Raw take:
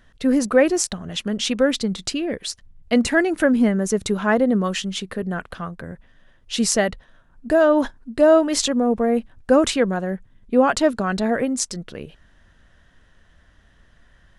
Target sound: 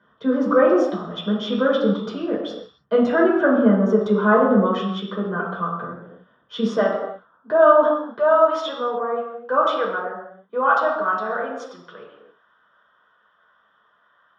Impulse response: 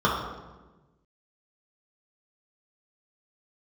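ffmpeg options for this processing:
-filter_complex "[0:a]asetnsamples=nb_out_samples=441:pad=0,asendcmd='6.77 highpass f 460;8.18 highpass f 770',highpass=270,lowpass=3000[link_01];[1:a]atrim=start_sample=2205,afade=type=out:start_time=0.37:duration=0.01,atrim=end_sample=16758[link_02];[link_01][link_02]afir=irnorm=-1:irlink=0,volume=-14dB"

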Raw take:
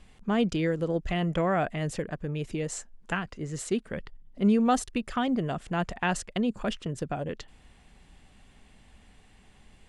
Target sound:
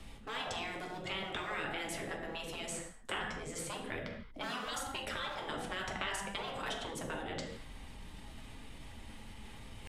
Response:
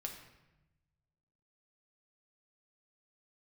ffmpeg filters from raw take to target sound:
-filter_complex "[0:a]asetrate=48091,aresample=44100,atempo=0.917004,acrossover=split=440|1100[link_01][link_02][link_03];[link_01]aeval=exprs='0.0355*(abs(mod(val(0)/0.0355+3,4)-2)-1)':channel_layout=same[link_04];[link_04][link_02][link_03]amix=inputs=3:normalize=0,acrossover=split=190|2700[link_05][link_06][link_07];[link_05]acompressor=threshold=-44dB:ratio=4[link_08];[link_06]acompressor=threshold=-35dB:ratio=4[link_09];[link_07]acompressor=threshold=-45dB:ratio=4[link_10];[link_08][link_09][link_10]amix=inputs=3:normalize=0[link_11];[1:a]atrim=start_sample=2205,afade=type=out:start_time=0.23:duration=0.01,atrim=end_sample=10584,asetrate=32634,aresample=44100[link_12];[link_11][link_12]afir=irnorm=-1:irlink=0,afftfilt=real='re*lt(hypot(re,im),0.0501)':imag='im*lt(hypot(re,im),0.0501)':win_size=1024:overlap=0.75,areverse,acompressor=mode=upward:threshold=-45dB:ratio=2.5,areverse,volume=3.5dB"

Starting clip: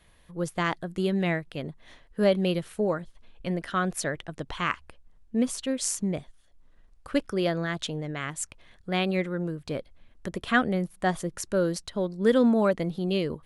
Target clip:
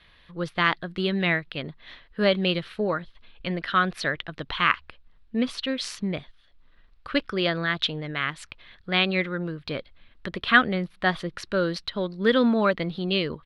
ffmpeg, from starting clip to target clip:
ffmpeg -i in.wav -af "firequalizer=gain_entry='entry(780,0);entry(1200,7);entry(4000,10);entry(6900,-14)':delay=0.05:min_phase=1" out.wav

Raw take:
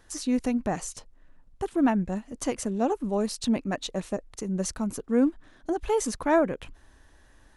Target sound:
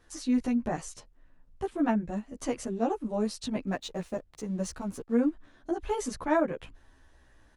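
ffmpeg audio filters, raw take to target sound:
ffmpeg -i in.wav -filter_complex "[0:a]highshelf=frequency=7500:gain=-7.5,asettb=1/sr,asplit=3[link_01][link_02][link_03];[link_01]atrim=end=3.674[link_04];[link_02]atrim=start=3.67:end=5.15,asetpts=PTS-STARTPTS,afade=type=in:duration=0.004:curve=qsin,afade=type=out:start_time=1.476:duration=0.004:curve=qsin,aeval=exprs='sgn(val(0))*max(abs(val(0))-0.00211,0)':channel_layout=same[link_05];[link_03]atrim=start=5.146[link_06];[link_04][link_05]acrossfade=duration=0.004:curve1=hsin:curve2=qsin[link_07];[link_07][link_06]acrossfade=duration=0.004:curve1=qsin:curve2=hsin,asplit=2[link_08][link_09];[link_09]adelay=12,afreqshift=-0.86[link_10];[link_08][link_10]amix=inputs=2:normalize=1" out.wav

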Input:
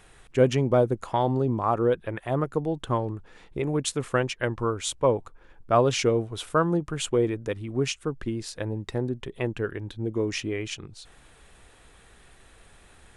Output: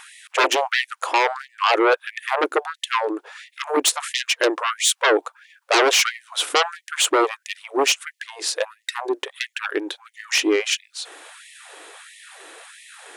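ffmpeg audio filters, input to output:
ffmpeg -i in.wav -af "aeval=exprs='0.398*sin(PI/2*5.01*val(0)/0.398)':channel_layout=same,afftfilt=real='re*gte(b*sr/1024,260*pow(1800/260,0.5+0.5*sin(2*PI*1.5*pts/sr)))':imag='im*gte(b*sr/1024,260*pow(1800/260,0.5+0.5*sin(2*PI*1.5*pts/sr)))':win_size=1024:overlap=0.75,volume=-3.5dB" out.wav

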